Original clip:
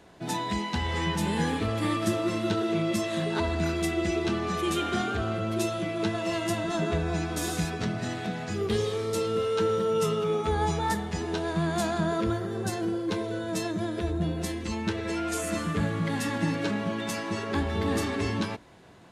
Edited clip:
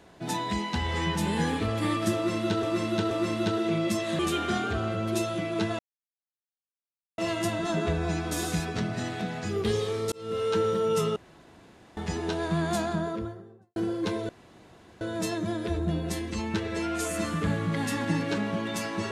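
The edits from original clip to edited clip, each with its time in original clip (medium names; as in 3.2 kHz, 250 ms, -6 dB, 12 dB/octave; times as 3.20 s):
2.15–2.63 s: loop, 3 plays
3.23–4.63 s: delete
6.23 s: insert silence 1.39 s
9.17–9.50 s: fade in
10.21–11.02 s: room tone
11.70–12.81 s: studio fade out
13.34 s: insert room tone 0.72 s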